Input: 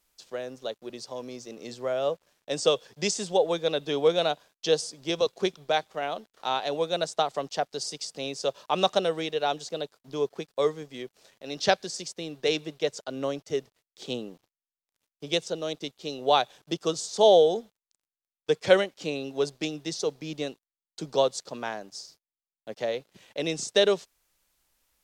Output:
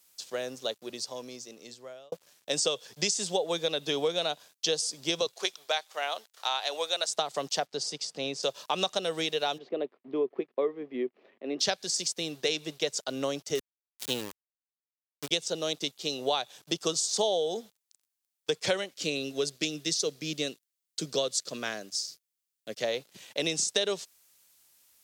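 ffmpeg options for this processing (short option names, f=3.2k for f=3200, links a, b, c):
-filter_complex "[0:a]asettb=1/sr,asplit=3[a][b][c];[a]atrim=end=5.334[d];[b]atrim=start=5.33:end=7.08,asetpts=PTS-STARTPTS,afade=t=in:d=0.004:c=qsin,afade=t=out:st=1.746:d=0.004:c=qsin,highpass=650[e];[c]atrim=start=7.076[f];[d][e]acrossfade=d=0.004:c1=hsin:c2=qsin[g];[g][f]acrossfade=d=0.004:c1=qsin:c2=hsin,asettb=1/sr,asplit=3[h][i][j];[h]atrim=end=7.664[k];[i]atrim=start=7.66:end=8.43,asetpts=PTS-STARTPTS,afade=t=in:d=0.004:c=qsin,afade=t=out:st=0.766:d=0.004:c=qsin,aemphasis=mode=reproduction:type=75kf[l];[j]atrim=start=8.426[m];[k][l]acrossfade=d=0.004:c1=hsin:c2=qsin[n];[n][m]acrossfade=d=0.004:c1=qsin:c2=hsin,asplit=3[o][p][q];[o]afade=t=out:st=9.57:d=0.02[r];[p]highpass=f=160:w=0.5412,highpass=f=160:w=1.3066,equalizer=f=160:t=q:w=4:g=-8,equalizer=f=250:t=q:w=4:g=7,equalizer=f=370:t=q:w=4:g=9,equalizer=f=880:t=q:w=4:g=-4,equalizer=f=1.5k:t=q:w=4:g=-9,lowpass=f=2.1k:w=0.5412,lowpass=f=2.1k:w=1.3066,afade=t=in:st=9.57:d=0.02,afade=t=out:st=11.59:d=0.02[s];[q]afade=t=in:st=11.59:d=0.02[t];[r][s][t]amix=inputs=3:normalize=0,asettb=1/sr,asplit=3[u][v][w];[u]atrim=end=13.554[x];[v]atrim=start=13.55:end=15.31,asetpts=PTS-STARTPTS,afade=t=in:d=0.004:c=qsin,afade=t=out:st=1.756:d=0.004:c=qsin,aeval=exprs='val(0)*gte(abs(val(0)),0.015)':c=same[y];[w]atrim=start=15.306[z];[x][y]acrossfade=d=0.004:c1=hsin:c2=qsin[aa];[aa][z]acrossfade=d=0.004:c1=qsin:c2=hsin,asettb=1/sr,asplit=3[ab][ac][ad];[ab]atrim=end=18.934[ae];[ac]atrim=start=18.93:end=22.84,asetpts=PTS-STARTPTS,afade=t=in:d=0.004:c=qsin,afade=t=out:st=3.906:d=0.004:c=qsin,equalizer=f=870:w=3.2:g=-13[af];[ad]atrim=start=22.836[ag];[ae][af]acrossfade=d=0.004:c1=hsin:c2=qsin[ah];[ah][ag]acrossfade=d=0.004:c1=qsin:c2=hsin,asplit=2[ai][aj];[ai]atrim=end=2.12,asetpts=PTS-STARTPTS,afade=t=out:st=0.66:d=1.46[ak];[aj]atrim=start=2.12,asetpts=PTS-STARTPTS,afade=t=in:d=0.004:c=hsin[al];[ak][al]concat=n=2:v=0:a=1,highpass=92,highshelf=f=2.9k:g=11.5,acompressor=threshold=-25dB:ratio=6"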